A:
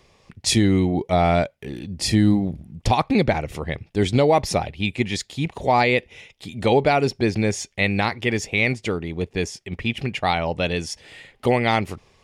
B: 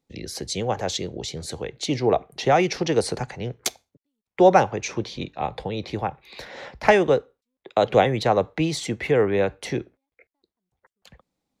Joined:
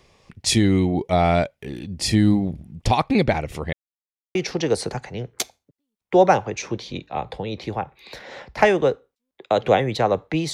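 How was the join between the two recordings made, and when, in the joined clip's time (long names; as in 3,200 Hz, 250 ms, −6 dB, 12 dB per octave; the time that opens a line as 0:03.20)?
A
0:03.73–0:04.35: silence
0:04.35: continue with B from 0:02.61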